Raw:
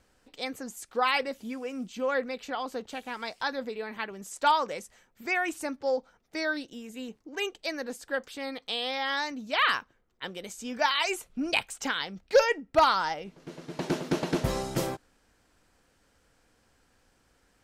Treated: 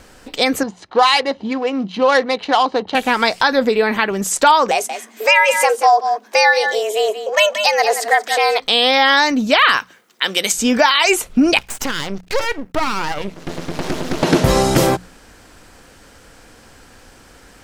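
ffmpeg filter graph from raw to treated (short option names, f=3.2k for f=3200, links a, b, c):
-filter_complex "[0:a]asettb=1/sr,asplit=3[a][b][c];[a]atrim=end=0.634[d];[b]atrim=start=0.63:end=2.95,asetpts=PTS-STARTPTS,afade=t=in:d=0.004:c=qsin,afade=t=out:st=2.316:d=0.004:c=qsin,aecho=1:1:1:0.44,atrim=end_sample=102312,adynamicsmooth=sensitivity=7:basefreq=1.4k,highpass=140,equalizer=f=150:t=q:w=4:g=-8,equalizer=f=240:t=q:w=4:g=-10,equalizer=f=1.2k:t=q:w=4:g=-5,equalizer=f=2k:t=q:w=4:g=-6,equalizer=f=4.1k:t=q:w=4:g=7,equalizer=f=7.9k:t=q:w=4:g=-8,lowpass=f=9.3k:w=0.5412,lowpass=f=9.3k:w=1.3066[e];[c]atrim=start=2.946[f];[d][e]acrossfade=d=0.004:c1=hsin:c2=qsin[g];[g][f]acrossfade=d=0.004:c1=qsin:c2=hsin,asettb=1/sr,asplit=3[h][i][j];[h]atrim=end=4.714[k];[i]atrim=start=4.71:end=8.6,asetpts=PTS-STARTPTS,afade=t=in:d=0.004:c=qsin,afade=t=out:st=3.886:d=0.004:c=qsin,afreqshift=210,aecho=1:1:181:0.266,atrim=end_sample=171549[l];[j]atrim=start=8.596[m];[k][l]acrossfade=d=0.004:c1=hsin:c2=qsin[n];[n][m]acrossfade=d=0.004:c1=qsin:c2=hsin,asettb=1/sr,asplit=3[o][p][q];[o]atrim=end=9.774[r];[p]atrim=start=9.77:end=10.52,asetpts=PTS-STARTPTS,afade=t=in:d=0.004:c=qsin,afade=t=out:st=0.746:d=0.004:c=qsin,highpass=f=160:w=0.5412,highpass=f=160:w=1.3066,tiltshelf=f=1.2k:g=-7[s];[q]atrim=start=10.516[t];[r][s]acrossfade=d=0.004:c1=hsin:c2=qsin[u];[u][t]acrossfade=d=0.004:c1=qsin:c2=hsin,asettb=1/sr,asplit=3[v][w][x];[v]atrim=end=11.584[y];[w]atrim=start=11.58:end=14.23,asetpts=PTS-STARTPTS,afade=t=in:d=0.004:c=qsin,afade=t=out:st=2.646:d=0.004:c=qsin,acompressor=threshold=-39dB:ratio=3:attack=3.2:release=140:knee=1:detection=peak,aeval=exprs='max(val(0),0)':c=same[z];[x]atrim=start=14.226[aa];[y][z]acrossfade=d=0.004:c1=hsin:c2=qsin[ab];[ab][aa]acrossfade=d=0.004:c1=qsin:c2=hsin,bandreject=f=60:t=h:w=6,bandreject=f=120:t=h:w=6,bandreject=f=180:t=h:w=6,acompressor=threshold=-32dB:ratio=3,alimiter=level_in=23dB:limit=-1dB:release=50:level=0:latency=1,volume=-1dB"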